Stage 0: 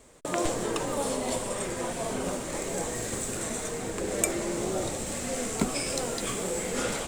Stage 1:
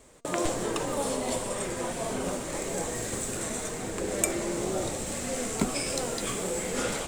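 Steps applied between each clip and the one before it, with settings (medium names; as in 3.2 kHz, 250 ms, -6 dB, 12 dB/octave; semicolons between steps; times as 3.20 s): de-hum 232.4 Hz, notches 36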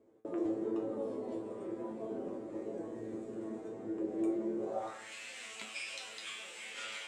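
feedback comb 110 Hz, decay 0.31 s, harmonics all, mix 90%; band-pass sweep 340 Hz -> 2.7 kHz, 4.57–5.15 s; trim +8 dB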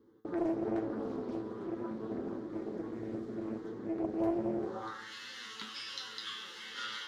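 static phaser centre 2.4 kHz, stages 6; loudspeaker Doppler distortion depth 0.6 ms; trim +6.5 dB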